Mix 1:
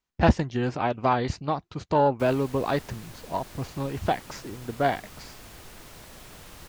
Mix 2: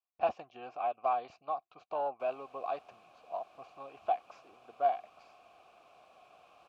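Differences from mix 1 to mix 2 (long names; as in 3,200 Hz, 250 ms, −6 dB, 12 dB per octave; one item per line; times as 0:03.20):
speech: add low-shelf EQ 310 Hz −9.5 dB
master: add formant filter a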